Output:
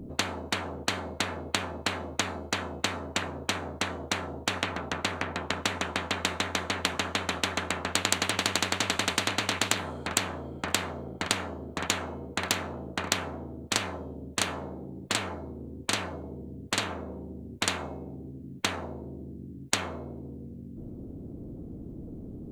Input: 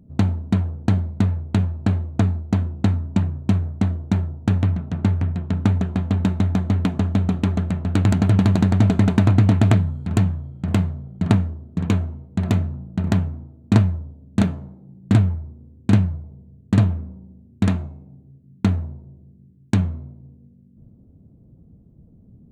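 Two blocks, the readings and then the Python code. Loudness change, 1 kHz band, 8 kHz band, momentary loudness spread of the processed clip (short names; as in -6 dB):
-9.5 dB, +1.0 dB, n/a, 15 LU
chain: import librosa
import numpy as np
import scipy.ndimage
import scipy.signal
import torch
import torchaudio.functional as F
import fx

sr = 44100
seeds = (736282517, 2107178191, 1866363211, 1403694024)

y = fx.peak_eq(x, sr, hz=280.0, db=11.5, octaves=0.77)
y = fx.spectral_comp(y, sr, ratio=10.0)
y = y * 10.0 ** (-4.5 / 20.0)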